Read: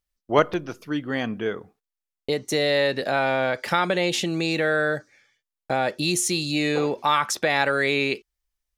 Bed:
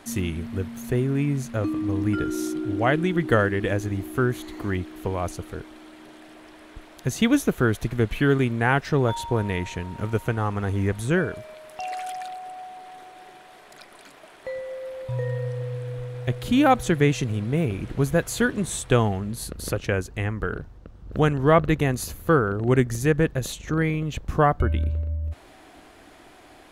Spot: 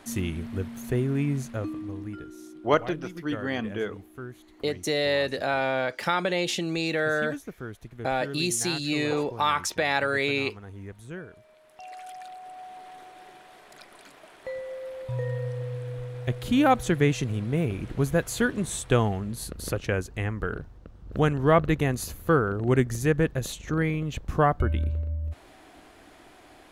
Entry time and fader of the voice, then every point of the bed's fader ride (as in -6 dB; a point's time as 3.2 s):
2.35 s, -3.5 dB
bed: 1.39 s -2.5 dB
2.35 s -17 dB
11.29 s -17 dB
12.77 s -2.5 dB